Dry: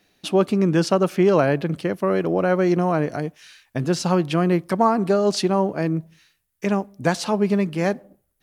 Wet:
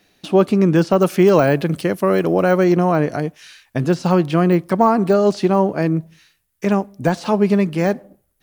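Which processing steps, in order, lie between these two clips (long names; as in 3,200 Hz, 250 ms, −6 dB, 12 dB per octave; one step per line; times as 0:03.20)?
de-essing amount 90%
0:00.98–0:02.64: high-shelf EQ 5,900 Hz +10 dB
level +4.5 dB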